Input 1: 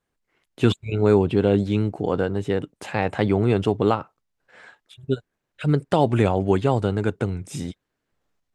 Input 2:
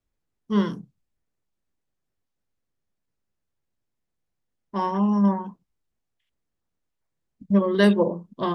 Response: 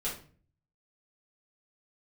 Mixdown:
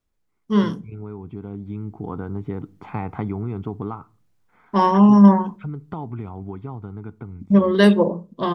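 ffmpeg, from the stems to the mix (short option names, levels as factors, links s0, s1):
-filter_complex "[0:a]lowpass=1400,aecho=1:1:0.9:0.8,acompressor=threshold=0.0891:ratio=6,volume=0.237,asplit=2[s0][s1];[s1]volume=0.0794[s2];[1:a]volume=1.33,asplit=2[s3][s4];[s4]volume=0.0841[s5];[2:a]atrim=start_sample=2205[s6];[s2][s5]amix=inputs=2:normalize=0[s7];[s7][s6]afir=irnorm=-1:irlink=0[s8];[s0][s3][s8]amix=inputs=3:normalize=0,dynaudnorm=f=270:g=11:m=3.76"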